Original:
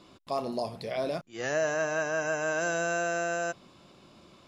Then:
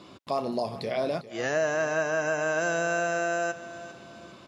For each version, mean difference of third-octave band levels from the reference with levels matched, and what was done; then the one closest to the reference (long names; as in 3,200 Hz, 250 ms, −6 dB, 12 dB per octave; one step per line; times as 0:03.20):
2.5 dB: high-pass filter 75 Hz
high-shelf EQ 7,100 Hz −6.5 dB
in parallel at +1 dB: downward compressor, threshold −38 dBFS, peak gain reduction 13.5 dB
on the sum: repeating echo 401 ms, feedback 40%, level −15 dB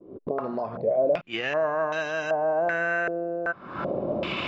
9.5 dB: camcorder AGC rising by 79 dB per second
noise gate with hold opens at −48 dBFS
low-shelf EQ 68 Hz −9.5 dB
low-pass on a step sequencer 2.6 Hz 430–3,600 Hz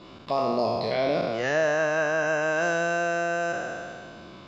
4.0 dB: peak hold with a decay on every bin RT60 1.77 s
high-shelf EQ 5,300 Hz +9.5 dB
in parallel at −1 dB: downward compressor, threshold −35 dBFS, peak gain reduction 12.5 dB
on the sum: high-frequency loss of the air 210 metres
level +2 dB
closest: first